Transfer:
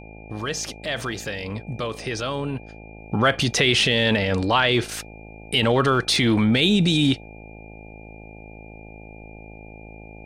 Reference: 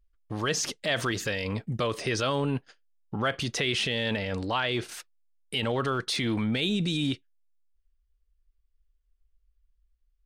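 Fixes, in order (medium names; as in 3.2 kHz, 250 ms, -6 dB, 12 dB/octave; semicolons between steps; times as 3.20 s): de-hum 53.9 Hz, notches 16; band-stop 2.4 kHz, Q 30; gain correction -9 dB, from 2.99 s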